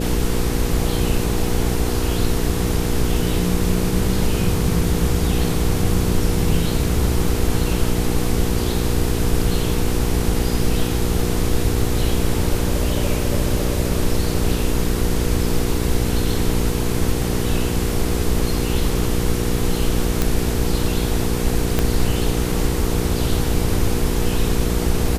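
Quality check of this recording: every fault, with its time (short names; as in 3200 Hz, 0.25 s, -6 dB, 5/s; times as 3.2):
hum 60 Hz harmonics 8 -23 dBFS
20.22 pop
21.79 pop -4 dBFS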